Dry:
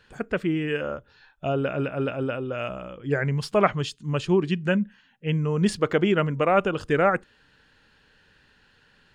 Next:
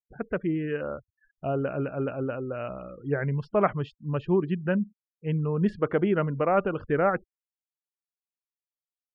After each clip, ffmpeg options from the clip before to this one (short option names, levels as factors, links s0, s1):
-af "afftfilt=real='re*gte(hypot(re,im),0.0112)':imag='im*gte(hypot(re,im),0.0112)':win_size=1024:overlap=0.75,lowpass=1600,volume=0.75"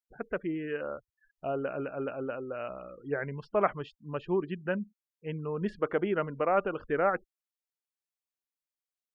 -af "equalizer=f=110:w=0.64:g=-11.5,volume=0.794"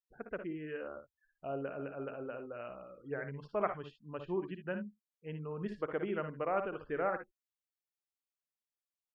-af "aecho=1:1:58|72:0.355|0.211,volume=0.422"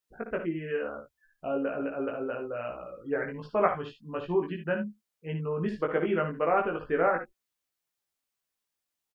-filter_complex "[0:a]asplit=2[s0][s1];[s1]adelay=18,volume=0.75[s2];[s0][s2]amix=inputs=2:normalize=0,volume=2.24"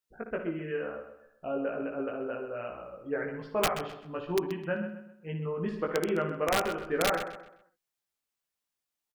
-filter_complex "[0:a]aeval=exprs='(mod(6.31*val(0)+1,2)-1)/6.31':c=same,asplit=2[s0][s1];[s1]adelay=129,lowpass=f=4300:p=1,volume=0.335,asplit=2[s2][s3];[s3]adelay=129,lowpass=f=4300:p=1,volume=0.36,asplit=2[s4][s5];[s5]adelay=129,lowpass=f=4300:p=1,volume=0.36,asplit=2[s6][s7];[s7]adelay=129,lowpass=f=4300:p=1,volume=0.36[s8];[s2][s4][s6][s8]amix=inputs=4:normalize=0[s9];[s0][s9]amix=inputs=2:normalize=0,volume=0.75"